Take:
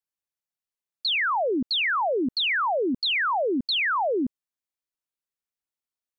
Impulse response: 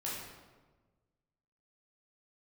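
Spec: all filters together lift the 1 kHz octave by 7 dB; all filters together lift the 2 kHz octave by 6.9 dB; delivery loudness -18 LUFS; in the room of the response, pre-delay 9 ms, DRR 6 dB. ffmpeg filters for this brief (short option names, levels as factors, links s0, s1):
-filter_complex "[0:a]equalizer=f=1000:t=o:g=7,equalizer=f=2000:t=o:g=6.5,asplit=2[s0][s1];[1:a]atrim=start_sample=2205,adelay=9[s2];[s1][s2]afir=irnorm=-1:irlink=0,volume=0.376[s3];[s0][s3]amix=inputs=2:normalize=0"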